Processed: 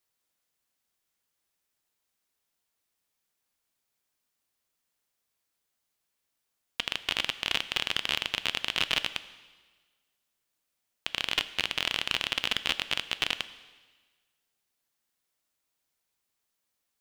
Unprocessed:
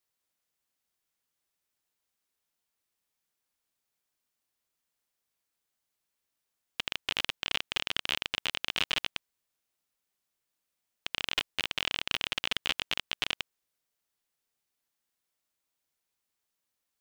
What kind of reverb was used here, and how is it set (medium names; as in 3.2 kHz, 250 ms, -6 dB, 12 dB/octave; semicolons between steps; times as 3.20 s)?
plate-style reverb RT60 1.4 s, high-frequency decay 1×, DRR 13 dB; trim +2.5 dB